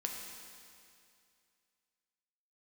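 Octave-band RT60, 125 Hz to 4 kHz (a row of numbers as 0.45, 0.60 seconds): 2.4, 2.4, 2.4, 2.4, 2.4, 2.4 seconds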